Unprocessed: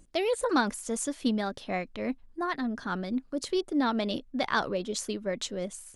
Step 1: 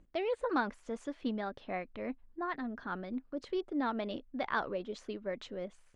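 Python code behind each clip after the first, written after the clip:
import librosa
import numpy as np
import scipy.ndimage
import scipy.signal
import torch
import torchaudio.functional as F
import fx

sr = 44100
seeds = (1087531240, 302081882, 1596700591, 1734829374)

y = scipy.signal.sosfilt(scipy.signal.butter(2, 2500.0, 'lowpass', fs=sr, output='sos'), x)
y = fx.dynamic_eq(y, sr, hz=150.0, q=0.84, threshold_db=-42.0, ratio=4.0, max_db=-5)
y = y * 10.0 ** (-5.0 / 20.0)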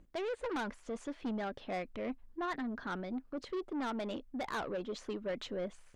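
y = 10.0 ** (-35.5 / 20.0) * np.tanh(x / 10.0 ** (-35.5 / 20.0))
y = fx.rider(y, sr, range_db=10, speed_s=2.0)
y = y * 10.0 ** (2.5 / 20.0)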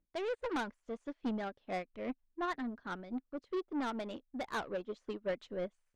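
y = fx.upward_expand(x, sr, threshold_db=-50.0, expansion=2.5)
y = y * 10.0 ** (3.0 / 20.0)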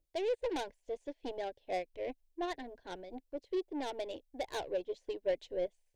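y = fx.fixed_phaser(x, sr, hz=520.0, stages=4)
y = y * 10.0 ** (4.0 / 20.0)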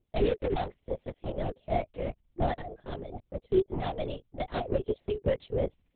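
y = fx.small_body(x, sr, hz=(390.0, 700.0), ring_ms=55, db=9)
y = fx.lpc_vocoder(y, sr, seeds[0], excitation='whisper', order=8)
y = y * 10.0 ** (3.5 / 20.0)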